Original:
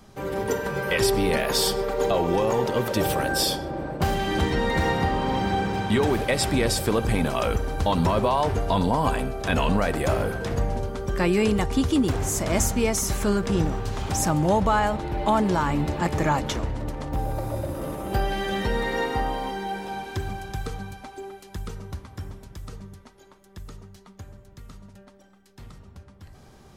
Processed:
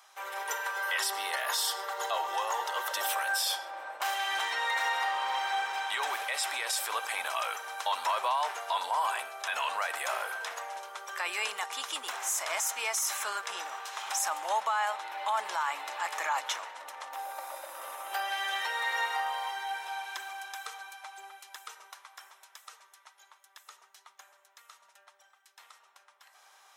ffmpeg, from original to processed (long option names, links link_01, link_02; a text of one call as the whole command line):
ffmpeg -i in.wav -filter_complex "[0:a]asettb=1/sr,asplit=3[link_01][link_02][link_03];[link_01]atrim=end=0.714[link_04];[link_02]atrim=start=0.71:end=3.09,asetpts=PTS-STARTPTS,afade=type=in:duration=0.004:curve=qsin,afade=type=out:start_time=2.376:duration=0.004:curve=qsin,bandreject=frequency=2400:width=5.8[link_05];[link_03]atrim=start=3.086[link_06];[link_04][link_05]acrossfade=duration=0.004:curve1=hsin:curve2=qsin[link_07];[link_07][link_06]acrossfade=duration=0.004:curve1=qsin:curve2=hsin,asettb=1/sr,asplit=3[link_08][link_09][link_10];[link_08]atrim=end=21.904[link_11];[link_09]atrim=start=21.9:end=23.67,asetpts=PTS-STARTPTS,afade=type=in:duration=0.004:curve=qsin,afade=type=out:start_time=1.766:duration=0.004:curve=qsin,equalizer=frequency=130:width=0.55:gain=-11.5[link_12];[link_10]atrim=start=23.666[link_13];[link_11][link_12]acrossfade=duration=0.004:curve1=hsin:curve2=qsin[link_14];[link_14][link_13]acrossfade=duration=0.004:curve1=qsin:curve2=hsin,highpass=frequency=850:width=0.5412,highpass=frequency=850:width=1.3066,bandreject=frequency=4600:width=10,alimiter=limit=-21dB:level=0:latency=1:release=12" out.wav